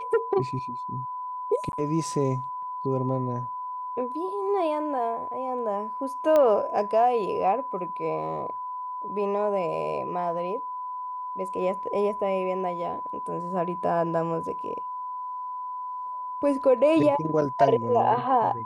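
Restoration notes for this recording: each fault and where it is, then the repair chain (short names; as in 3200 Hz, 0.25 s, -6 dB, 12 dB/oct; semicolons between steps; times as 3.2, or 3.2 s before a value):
tone 1000 Hz -31 dBFS
1.72–1.73 gap 11 ms
6.36 pop -12 dBFS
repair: de-click; notch 1000 Hz, Q 30; interpolate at 1.72, 11 ms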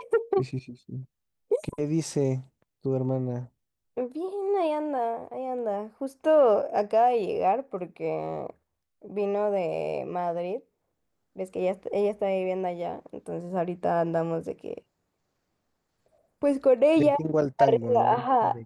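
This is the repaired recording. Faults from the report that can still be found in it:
none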